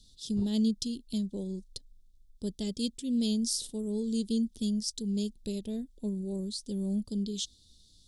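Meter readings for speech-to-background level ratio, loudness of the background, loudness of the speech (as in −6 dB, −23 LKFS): 16.5 dB, −49.5 LKFS, −33.0 LKFS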